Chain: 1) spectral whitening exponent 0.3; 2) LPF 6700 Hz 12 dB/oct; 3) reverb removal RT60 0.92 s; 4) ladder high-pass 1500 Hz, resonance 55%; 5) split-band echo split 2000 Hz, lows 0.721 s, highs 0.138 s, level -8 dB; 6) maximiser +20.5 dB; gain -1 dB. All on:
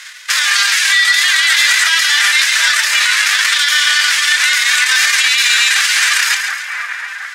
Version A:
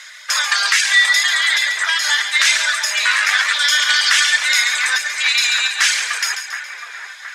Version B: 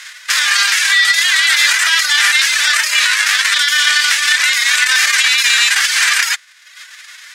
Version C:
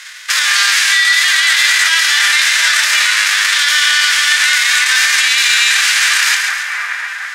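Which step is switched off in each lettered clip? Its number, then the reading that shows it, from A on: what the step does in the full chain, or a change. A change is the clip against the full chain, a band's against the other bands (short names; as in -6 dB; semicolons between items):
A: 1, crest factor change +4.0 dB; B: 5, momentary loudness spread change -5 LU; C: 3, momentary loudness spread change -2 LU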